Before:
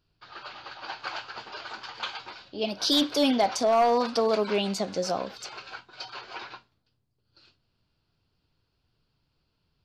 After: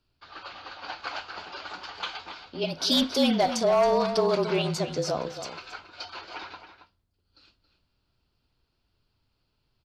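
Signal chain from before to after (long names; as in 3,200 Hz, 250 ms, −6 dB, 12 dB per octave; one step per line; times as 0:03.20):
frequency shifter −34 Hz
slap from a distant wall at 47 metres, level −10 dB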